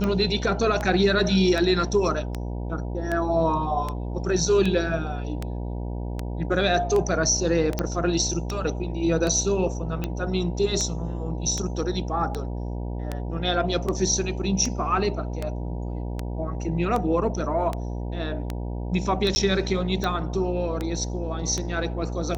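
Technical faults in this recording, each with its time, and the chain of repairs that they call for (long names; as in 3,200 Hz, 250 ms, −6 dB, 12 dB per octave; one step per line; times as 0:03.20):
mains buzz 60 Hz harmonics 16 −30 dBFS
scratch tick 78 rpm −14 dBFS
0:07.79: click −11 dBFS
0:19.35–0:19.36: drop-out 10 ms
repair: click removal
hum removal 60 Hz, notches 16
repair the gap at 0:19.35, 10 ms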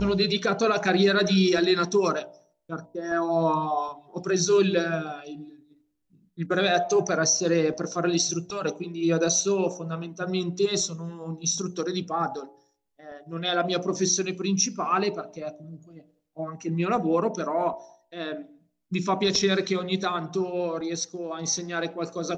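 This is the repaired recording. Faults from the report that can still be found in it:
none of them is left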